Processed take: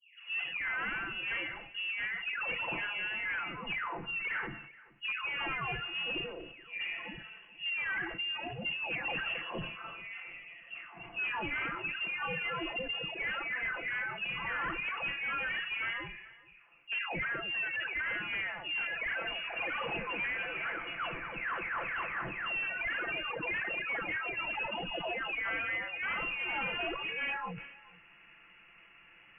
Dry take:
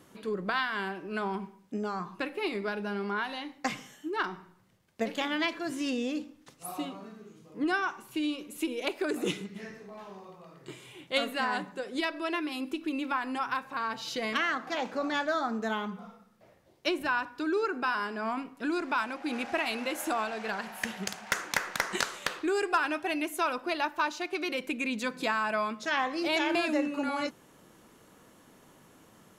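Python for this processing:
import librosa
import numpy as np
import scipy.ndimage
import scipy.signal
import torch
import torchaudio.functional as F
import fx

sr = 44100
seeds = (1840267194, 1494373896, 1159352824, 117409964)

p1 = fx.spec_delay(x, sr, highs='late', ms=803)
p2 = scipy.signal.sosfilt(scipy.signal.butter(2, 280.0, 'highpass', fs=sr, output='sos'), p1)
p3 = fx.low_shelf(p2, sr, hz=370.0, db=-6.0)
p4 = fx.rider(p3, sr, range_db=4, speed_s=0.5)
p5 = p3 + (p4 * librosa.db_to_amplitude(2.5))
p6 = np.clip(10.0 ** (27.0 / 20.0) * p5, -1.0, 1.0) / 10.0 ** (27.0 / 20.0)
p7 = p6 + fx.echo_single(p6, sr, ms=430, db=-21.5, dry=0)
p8 = fx.freq_invert(p7, sr, carrier_hz=3100)
p9 = fx.sustainer(p8, sr, db_per_s=61.0)
y = p9 * librosa.db_to_amplitude(-5.0)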